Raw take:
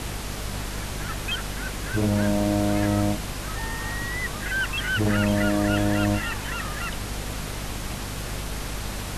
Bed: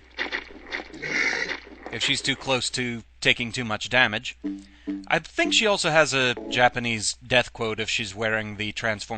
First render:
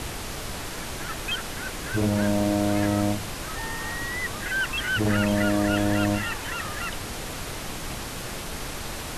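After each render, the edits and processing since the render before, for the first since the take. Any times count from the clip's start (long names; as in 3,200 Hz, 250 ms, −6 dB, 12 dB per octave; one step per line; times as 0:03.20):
hum removal 50 Hz, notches 5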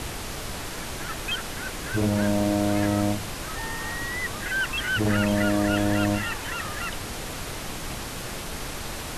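no processing that can be heard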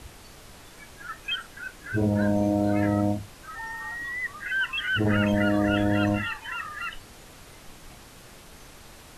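noise reduction from a noise print 14 dB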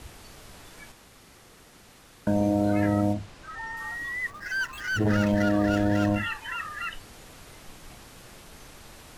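0:00.92–0:02.27: fill with room tone
0:03.13–0:03.77: high-frequency loss of the air 56 metres
0:04.30–0:06.16: running median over 15 samples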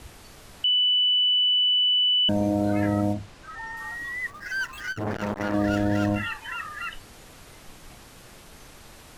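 0:00.64–0:02.29: beep over 2,980 Hz −18 dBFS
0:04.90–0:05.54: saturating transformer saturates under 790 Hz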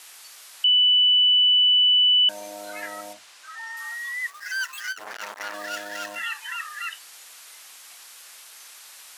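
high-pass filter 1,100 Hz 12 dB per octave
high-shelf EQ 3,600 Hz +9.5 dB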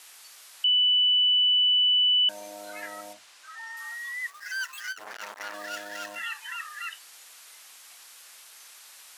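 level −4 dB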